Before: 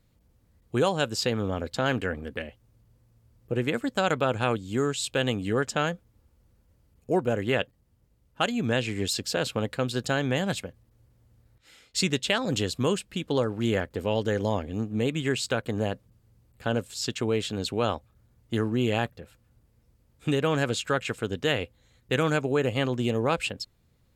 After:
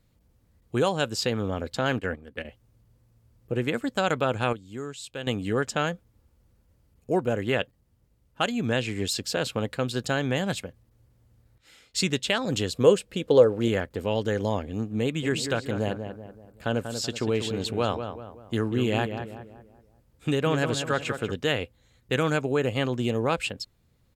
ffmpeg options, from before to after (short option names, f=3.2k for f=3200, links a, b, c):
-filter_complex "[0:a]asettb=1/sr,asplit=3[a][b][c];[a]atrim=end=1.994[d];[b]atrim=start=1.99:end=2.45,asetpts=PTS-STARTPTS,afade=t=in:d=0.004:c=qsin,afade=t=out:st=0.456:d=0.004:c=qsin,agate=range=-10dB:threshold=-34dB:ratio=16:release=100:detection=peak[e];[c]atrim=start=2.446[f];[d][e]acrossfade=d=0.004:c1=hsin:c2=qsin[g];[g][f]acrossfade=d=0.004:c1=qsin:c2=hsin,asettb=1/sr,asplit=3[h][i][j];[h]atrim=end=12.744[k];[i]atrim=start=12.74:end=13.68,asetpts=PTS-STARTPTS,afade=t=in:d=0.004:c=qsin,afade=t=out:st=0.936:d=0.004:c=qsin,equalizer=f=490:w=2.4:g=12.5[l];[j]atrim=start=13.676[m];[k][l]acrossfade=d=0.004:c1=hsin:c2=qsin[n];[n][m]acrossfade=d=0.004:c1=qsin:c2=hsin,asplit=3[o][p][q];[o]afade=t=out:st=15.22:d=0.02[r];[p]asplit=2[s][t];[t]adelay=190,lowpass=f=1.9k:p=1,volume=-7.5dB,asplit=2[u][v];[v]adelay=190,lowpass=f=1.9k:p=1,volume=0.44,asplit=2[w][x];[x]adelay=190,lowpass=f=1.9k:p=1,volume=0.44,asplit=2[y][z];[z]adelay=190,lowpass=f=1.9k:p=1,volume=0.44,asplit=2[aa][ab];[ab]adelay=190,lowpass=f=1.9k:p=1,volume=0.44[ac];[s][u][w][y][aa][ac]amix=inputs=6:normalize=0,afade=t=in:st=15.22:d=0.02,afade=t=out:st=21.31:d=0.02[ad];[q]afade=t=in:st=21.31:d=0.02[ae];[r][ad][ae]amix=inputs=3:normalize=0,asplit=3[af][ag][ah];[af]atrim=end=4.532[ai];[ag]atrim=start=4.528:end=5.272,asetpts=PTS-STARTPTS,volume=-9.5dB[aj];[ah]atrim=start=5.268[ak];[ai][aj]acrossfade=d=0.004:c1=hsin:c2=hsin[al];[al][ak]acrossfade=d=0.004:c1=hsin:c2=hsin"